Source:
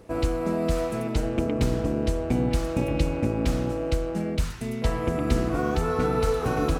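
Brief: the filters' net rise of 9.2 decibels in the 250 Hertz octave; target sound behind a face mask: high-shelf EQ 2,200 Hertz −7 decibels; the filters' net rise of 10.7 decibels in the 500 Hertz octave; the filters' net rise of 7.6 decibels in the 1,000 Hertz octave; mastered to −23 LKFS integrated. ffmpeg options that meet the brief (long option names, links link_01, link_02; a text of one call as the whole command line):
ffmpeg -i in.wav -af "equalizer=frequency=250:width_type=o:gain=8.5,equalizer=frequency=500:width_type=o:gain=8.5,equalizer=frequency=1000:width_type=o:gain=8,highshelf=frequency=2200:gain=-7,volume=-5dB" out.wav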